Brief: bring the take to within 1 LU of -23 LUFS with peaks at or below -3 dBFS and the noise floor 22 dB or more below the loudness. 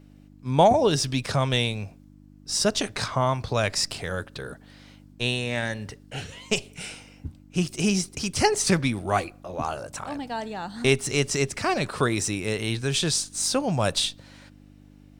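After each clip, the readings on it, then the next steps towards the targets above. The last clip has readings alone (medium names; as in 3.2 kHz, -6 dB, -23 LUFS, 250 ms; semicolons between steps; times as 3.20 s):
hum 50 Hz; highest harmonic 300 Hz; hum level -52 dBFS; loudness -25.0 LUFS; peak level -7.0 dBFS; loudness target -23.0 LUFS
-> de-hum 50 Hz, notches 6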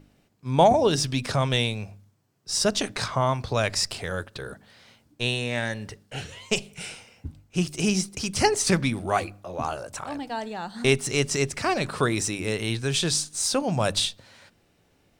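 hum not found; loudness -25.5 LUFS; peak level -7.0 dBFS; loudness target -23.0 LUFS
-> trim +2.5 dB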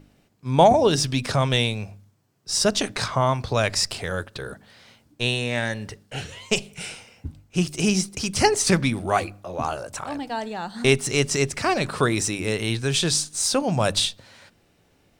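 loudness -23.0 LUFS; peak level -4.5 dBFS; noise floor -62 dBFS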